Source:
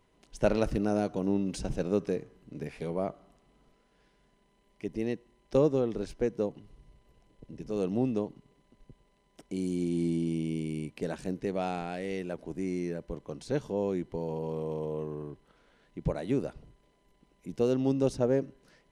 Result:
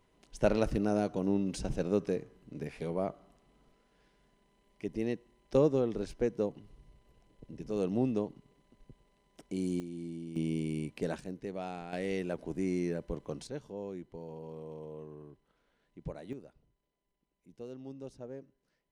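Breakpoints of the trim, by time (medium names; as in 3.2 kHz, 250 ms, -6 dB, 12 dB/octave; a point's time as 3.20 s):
-1.5 dB
from 9.80 s -12 dB
from 10.36 s -0.5 dB
from 11.20 s -7.5 dB
from 11.93 s +0.5 dB
from 13.47 s -10.5 dB
from 16.33 s -18 dB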